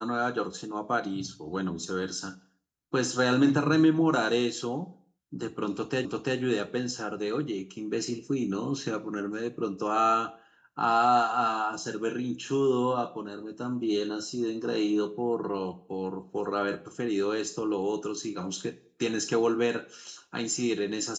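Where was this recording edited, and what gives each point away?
6.05 s: repeat of the last 0.34 s

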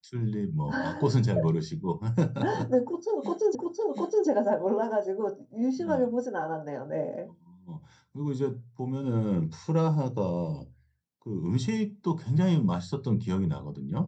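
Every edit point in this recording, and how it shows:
3.55 s: repeat of the last 0.72 s

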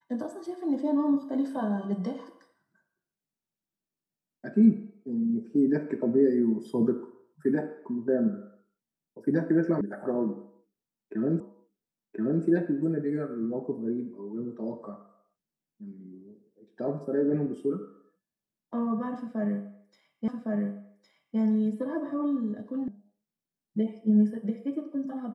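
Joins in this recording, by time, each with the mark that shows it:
9.81 s: sound stops dead
11.40 s: repeat of the last 1.03 s
20.28 s: repeat of the last 1.11 s
22.88 s: sound stops dead

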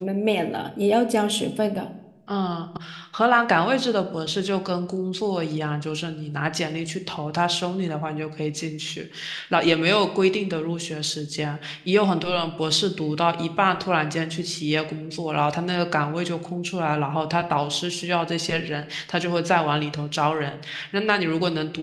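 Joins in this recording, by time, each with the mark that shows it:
2.77 s: sound stops dead

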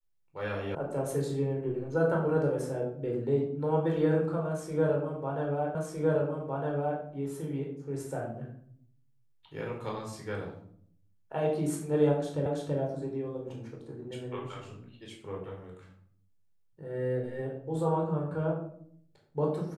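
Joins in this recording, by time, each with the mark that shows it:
0.75 s: sound stops dead
5.75 s: repeat of the last 1.26 s
12.46 s: repeat of the last 0.33 s

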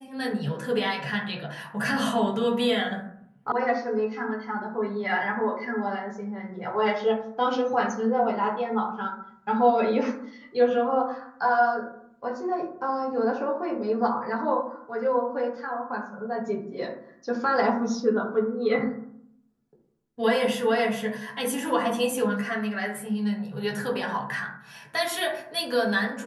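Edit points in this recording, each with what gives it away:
3.52 s: sound stops dead

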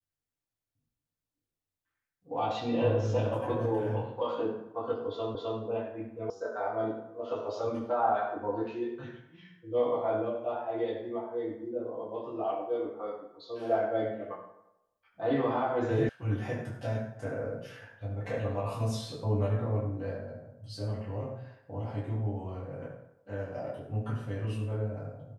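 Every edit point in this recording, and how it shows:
5.35 s: repeat of the last 0.26 s
6.30 s: sound stops dead
16.09 s: sound stops dead

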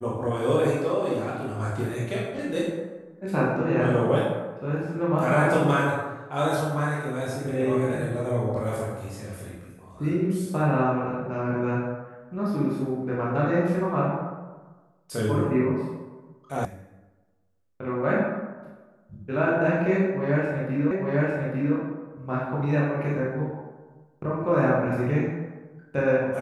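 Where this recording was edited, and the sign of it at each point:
16.65 s: sound stops dead
20.91 s: repeat of the last 0.85 s

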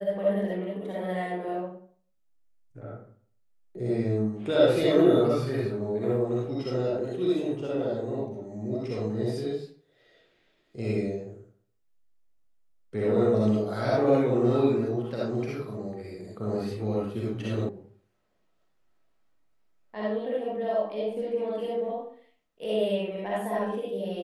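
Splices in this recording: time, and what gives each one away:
17.69 s: sound stops dead

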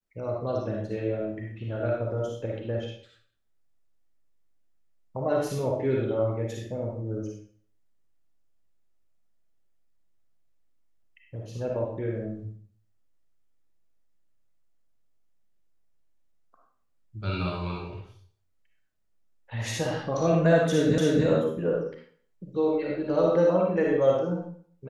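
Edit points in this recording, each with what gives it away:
20.98 s: repeat of the last 0.28 s

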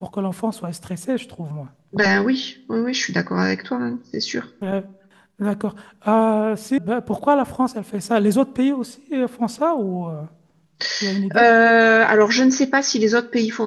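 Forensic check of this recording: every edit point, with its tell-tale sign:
6.78 s: sound stops dead

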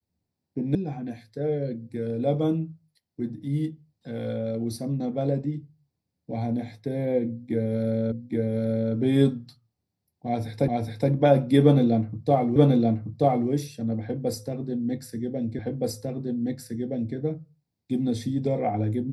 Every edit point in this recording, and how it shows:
0.75 s: sound stops dead
8.12 s: repeat of the last 0.82 s
10.68 s: repeat of the last 0.42 s
12.56 s: repeat of the last 0.93 s
15.59 s: repeat of the last 1.57 s

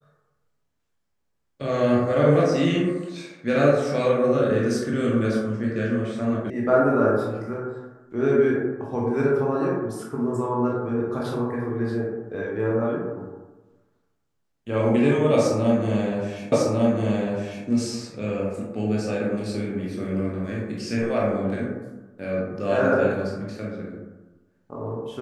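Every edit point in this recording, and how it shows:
6.50 s: sound stops dead
16.52 s: repeat of the last 1.15 s

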